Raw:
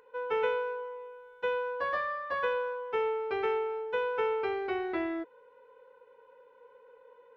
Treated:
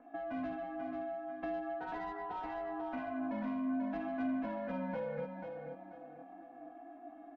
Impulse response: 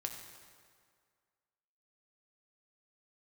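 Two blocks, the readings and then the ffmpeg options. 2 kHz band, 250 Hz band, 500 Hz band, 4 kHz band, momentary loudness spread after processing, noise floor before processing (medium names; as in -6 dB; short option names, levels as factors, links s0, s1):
-12.0 dB, +4.5 dB, -9.5 dB, under -15 dB, 16 LU, -59 dBFS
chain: -filter_complex "[0:a]asplit=2[s0][s1];[s1]alimiter=level_in=1.88:limit=0.0631:level=0:latency=1,volume=0.531,volume=0.944[s2];[s0][s2]amix=inputs=2:normalize=0,aeval=exprs='val(0)*sin(2*PI*180*n/s)':c=same,acrossover=split=460 2200:gain=0.251 1 0.2[s3][s4][s5];[s3][s4][s5]amix=inputs=3:normalize=0,flanger=delay=17:depth=6.7:speed=0.42,bandreject=f=1200:w=5,aecho=1:1:4.1:0.88,asoftclip=type=tanh:threshold=0.0299,acompressor=threshold=0.00631:ratio=6,tiltshelf=f=640:g=7.5,aecho=1:1:489|978|1467:0.501|0.135|0.0365,volume=1.78"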